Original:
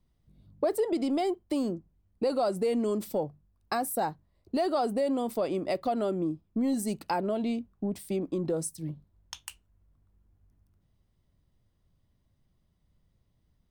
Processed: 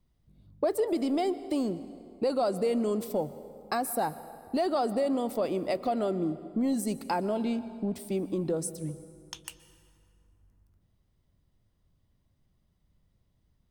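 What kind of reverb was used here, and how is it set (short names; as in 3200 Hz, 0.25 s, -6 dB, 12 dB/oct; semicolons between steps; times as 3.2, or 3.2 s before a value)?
plate-style reverb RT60 2.4 s, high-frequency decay 0.65×, pre-delay 0.11 s, DRR 14.5 dB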